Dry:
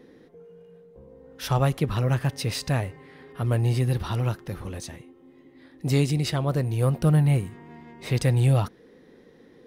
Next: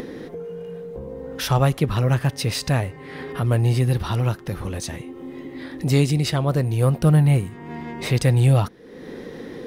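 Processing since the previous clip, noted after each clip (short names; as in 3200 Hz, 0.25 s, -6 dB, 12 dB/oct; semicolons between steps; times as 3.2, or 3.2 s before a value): upward compressor, threshold -26 dBFS; gain +4 dB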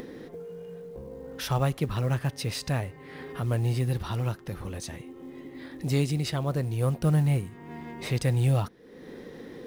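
short-mantissa float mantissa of 4-bit; gain -7.5 dB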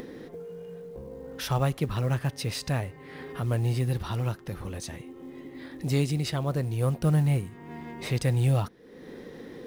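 nothing audible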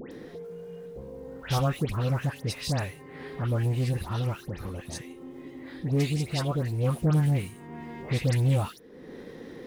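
dispersion highs, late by 0.118 s, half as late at 1800 Hz; Doppler distortion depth 0.2 ms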